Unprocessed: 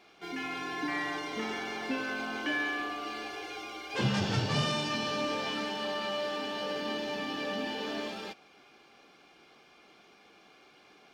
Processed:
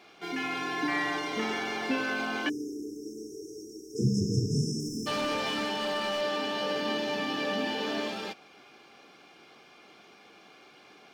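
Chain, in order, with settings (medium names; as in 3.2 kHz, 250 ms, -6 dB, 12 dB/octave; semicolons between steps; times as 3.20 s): high-pass 76 Hz; 4.80–6.21 s: hard clipper -30.5 dBFS, distortion -20 dB; 2.49–5.07 s: spectral selection erased 480–5000 Hz; trim +4 dB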